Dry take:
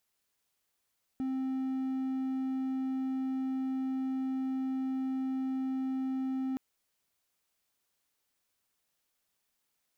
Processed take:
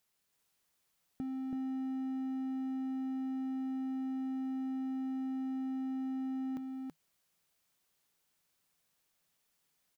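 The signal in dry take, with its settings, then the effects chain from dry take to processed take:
tone triangle 263 Hz -28.5 dBFS 5.37 s
peaking EQ 160 Hz +8 dB 0.26 oct; compression 2.5:1, threshold -39 dBFS; on a send: delay 328 ms -3 dB

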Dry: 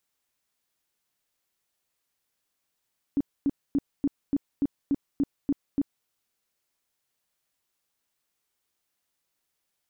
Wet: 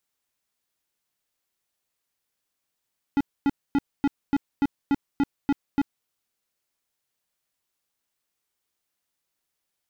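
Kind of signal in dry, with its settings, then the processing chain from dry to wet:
tone bursts 281 Hz, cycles 10, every 0.29 s, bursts 10, -20 dBFS
waveshaping leveller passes 3; in parallel at -3.5 dB: saturation -32 dBFS

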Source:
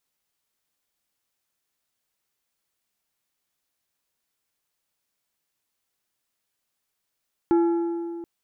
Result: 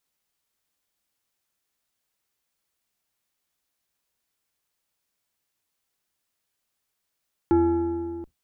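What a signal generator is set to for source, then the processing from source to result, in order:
metal hit plate, length 0.73 s, lowest mode 339 Hz, decay 2.40 s, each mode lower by 11 dB, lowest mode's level -15 dB
octave divider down 2 oct, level -6 dB

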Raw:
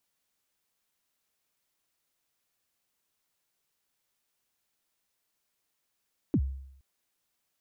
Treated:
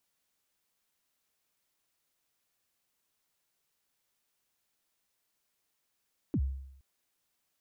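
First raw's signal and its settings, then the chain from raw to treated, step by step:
kick drum length 0.47 s, from 350 Hz, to 67 Hz, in 63 ms, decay 0.74 s, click off, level -19.5 dB
peak limiter -26 dBFS

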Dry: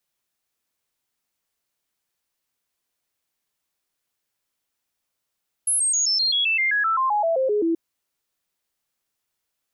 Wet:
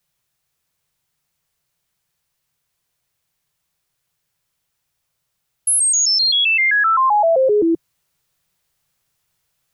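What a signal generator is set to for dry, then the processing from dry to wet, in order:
stepped sine 10.6 kHz down, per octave 3, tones 16, 0.13 s, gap 0.00 s -18 dBFS
resonant low shelf 190 Hz +6 dB, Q 3; in parallel at +1 dB: gain riding

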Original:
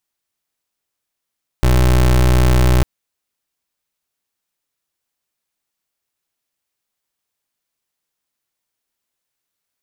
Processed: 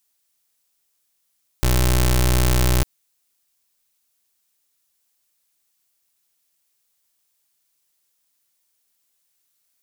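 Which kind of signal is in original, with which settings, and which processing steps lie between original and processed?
pulse 62.3 Hz, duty 26% -11.5 dBFS 1.20 s
treble shelf 3.6 kHz +11.5 dB; peak limiter -4 dBFS

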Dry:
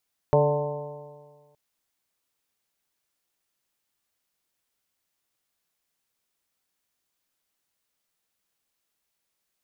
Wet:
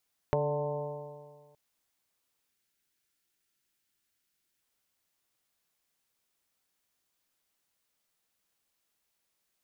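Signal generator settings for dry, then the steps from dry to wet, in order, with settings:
stretched partials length 1.22 s, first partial 145 Hz, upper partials -12/1/3/-8.5/-4/-12.5 dB, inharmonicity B 0.0015, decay 1.64 s, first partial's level -21 dB
compression 3:1, threshold -29 dBFS; time-frequency box 2.49–4.61 s, 410–1300 Hz -6 dB

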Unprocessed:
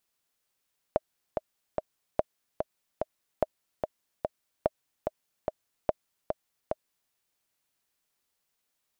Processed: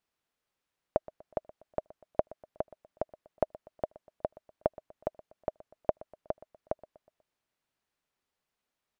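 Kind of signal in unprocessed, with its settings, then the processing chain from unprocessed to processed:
metronome 146 bpm, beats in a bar 3, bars 5, 623 Hz, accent 5 dB -10 dBFS
low-pass 2.2 kHz 6 dB/octave; feedback delay 122 ms, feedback 47%, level -20 dB

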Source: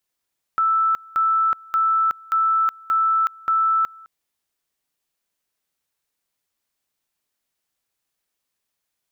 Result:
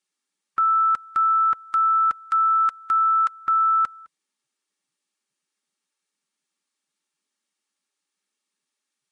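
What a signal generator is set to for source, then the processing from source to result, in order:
two-level tone 1.32 kHz -15.5 dBFS, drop 25 dB, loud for 0.37 s, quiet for 0.21 s, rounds 6
Butterworth band-stop 690 Hz, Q 4; comb of notches 500 Hz; Vorbis 48 kbps 22.05 kHz

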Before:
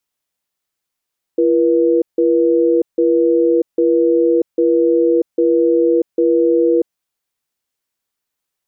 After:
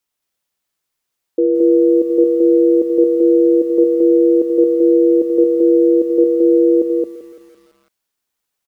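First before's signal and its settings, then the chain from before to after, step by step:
cadence 339 Hz, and 482 Hz, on 0.64 s, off 0.16 s, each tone -13 dBFS 5.44 s
hum notches 60/120/180/240 Hz; loudspeakers at several distances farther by 28 m -11 dB, 76 m -2 dB; bit-crushed delay 169 ms, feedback 55%, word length 7-bit, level -15 dB

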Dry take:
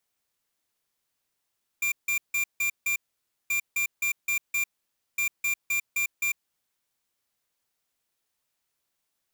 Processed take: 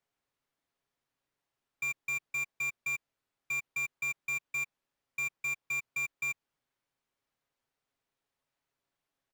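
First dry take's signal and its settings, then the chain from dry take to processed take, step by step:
beep pattern square 2.38 kHz, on 0.10 s, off 0.16 s, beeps 5, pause 0.54 s, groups 3, -26 dBFS
low-pass 1.7 kHz 6 dB/octave; comb 7.3 ms, depth 31%

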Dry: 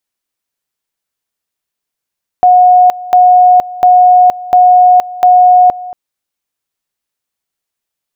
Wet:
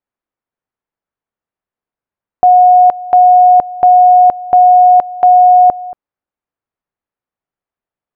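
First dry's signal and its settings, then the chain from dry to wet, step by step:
two-level tone 726 Hz -2 dBFS, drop 19 dB, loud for 0.47 s, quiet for 0.23 s, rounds 5
low-pass 1.4 kHz 12 dB/octave

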